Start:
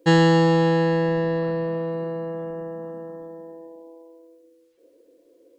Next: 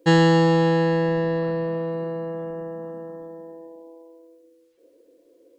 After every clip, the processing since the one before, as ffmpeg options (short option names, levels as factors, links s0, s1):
-af anull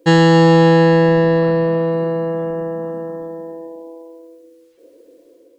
-af "dynaudnorm=f=140:g=5:m=1.78,volume=1.68"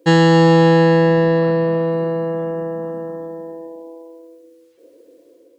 -af "highpass=48,volume=0.891"